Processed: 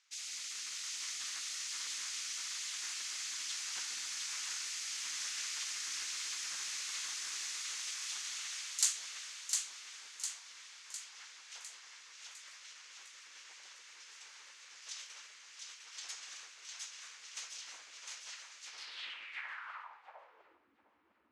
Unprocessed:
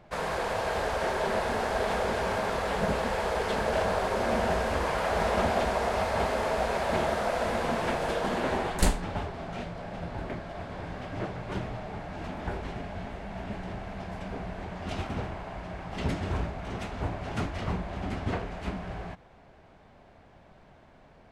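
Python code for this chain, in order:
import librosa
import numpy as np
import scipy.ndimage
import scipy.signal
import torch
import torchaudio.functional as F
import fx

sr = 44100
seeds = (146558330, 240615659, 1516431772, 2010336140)

p1 = scipy.signal.sosfilt(scipy.signal.butter(4, 110.0, 'highpass', fs=sr, output='sos'), x)
p2 = fx.spec_gate(p1, sr, threshold_db=-15, keep='weak')
p3 = p2 + fx.echo_split(p2, sr, split_hz=710.0, low_ms=143, high_ms=705, feedback_pct=52, wet_db=-4.0, dry=0)
p4 = fx.filter_sweep_bandpass(p3, sr, from_hz=6400.0, to_hz=270.0, start_s=18.66, end_s=20.72, q=3.1)
y = F.gain(torch.from_numpy(p4), 9.5).numpy()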